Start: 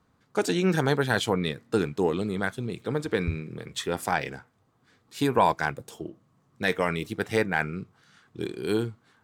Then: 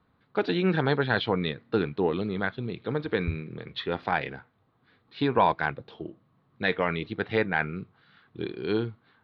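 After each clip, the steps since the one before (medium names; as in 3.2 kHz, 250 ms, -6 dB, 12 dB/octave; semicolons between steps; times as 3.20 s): elliptic low-pass 4.1 kHz, stop band 50 dB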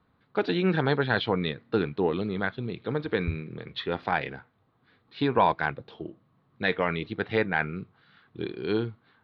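no audible change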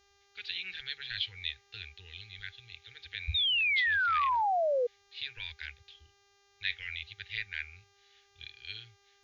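inverse Chebyshev band-stop 140–1200 Hz, stop band 40 dB; painted sound fall, 3.34–4.87 s, 470–3800 Hz -28 dBFS; mains buzz 400 Hz, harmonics 17, -68 dBFS -2 dB/octave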